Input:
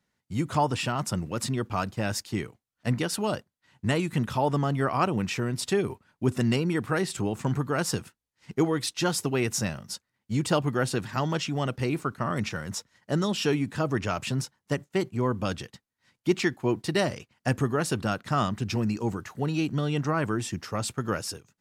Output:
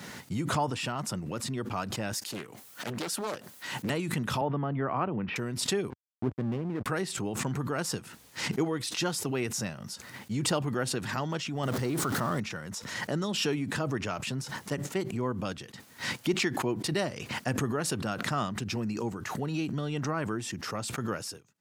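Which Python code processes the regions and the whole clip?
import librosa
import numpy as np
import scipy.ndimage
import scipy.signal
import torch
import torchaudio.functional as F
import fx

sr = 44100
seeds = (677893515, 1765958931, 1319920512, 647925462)

y = fx.chain(x, sr, fx.highpass(hz=280.0, slope=6),
    fx.high_shelf(hz=9500.0, db=10.0),
    fx.doppler_dist(depth_ms=0.86), at=(2.13, 3.9))
y = fx.chain(y, sr, fx.gaussian_blur(sigma=3.3),
    fx.band_squash(depth_pct=40), at=(4.41, 5.36))
y = fx.chain(y, sr, fx.lowpass(hz=1300.0, slope=12),
    fx.backlash(play_db=-26.0), at=(5.9, 6.86))
y = fx.chain(y, sr, fx.zero_step(step_db=-35.5),
    fx.peak_eq(hz=2500.0, db=-7.5, octaves=0.37),
    fx.env_flatten(amount_pct=100), at=(11.63, 12.4))
y = scipy.signal.sosfilt(scipy.signal.butter(2, 110.0, 'highpass', fs=sr, output='sos'), y)
y = fx.pre_swell(y, sr, db_per_s=41.0)
y = F.gain(torch.from_numpy(y), -5.0).numpy()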